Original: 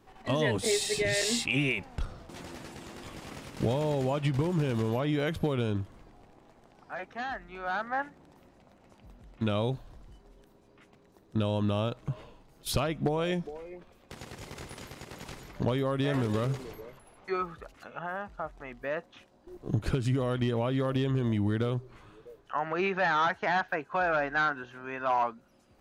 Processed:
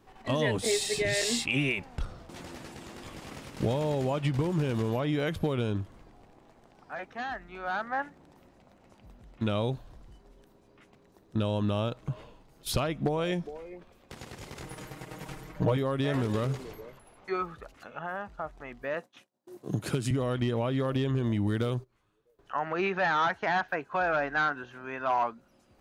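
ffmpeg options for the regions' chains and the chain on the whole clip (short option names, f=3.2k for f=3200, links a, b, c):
-filter_complex "[0:a]asettb=1/sr,asplit=3[a][b][c];[a]atrim=end=14.634[d];[b]atrim=start=14.63:end=15.77,asetpts=PTS-STARTPTS,afade=t=in:d=0.004:c=qsin,afade=t=out:st=1.136:d=0.004:c=qsin,equalizer=f=4.6k:t=o:w=1.7:g=-6.5,aecho=1:1:6.4:0.92,atrim=end_sample=50274[e];[c]atrim=start=15.766[f];[d][e]acrossfade=d=0.004:c1=hsin:c2=qsin[g];[g][f]acrossfade=d=0.004:c1=qsin:c2=hsin,asettb=1/sr,asplit=3[h][i][j];[h]atrim=end=18.944[k];[i]atrim=start=18.94:end=20.11,asetpts=PTS-STARTPTS,afade=t=in:d=0.004:c=qsin,afade=t=out:st=1.166:d=0.004:c=qsin,agate=range=-33dB:threshold=-50dB:ratio=3:release=100:detection=peak,highpass=f=120:w=0.5412,highpass=f=120:w=1.3066,equalizer=f=11k:t=o:w=1.5:g=10.5[l];[j]atrim=start=20.106[m];[k][l]acrossfade=d=0.004:c1=hsin:c2=qsin[n];[n][m]acrossfade=d=0.004:c1=qsin:c2=hsin,asettb=1/sr,asplit=3[o][p][q];[o]atrim=end=21.474[r];[p]atrim=start=21.47:end=22.39,asetpts=PTS-STARTPTS,afade=t=in:d=0.004:c=qsin,afade=t=out:st=0.916:d=0.004:c=qsin,highshelf=f=5.5k:g=9,agate=range=-20dB:threshold=-44dB:ratio=16:release=100:detection=peak[s];[q]atrim=start=22.386[t];[r][s]acrossfade=d=0.004:c1=hsin:c2=qsin[u];[u][t]acrossfade=d=0.004:c1=qsin:c2=hsin"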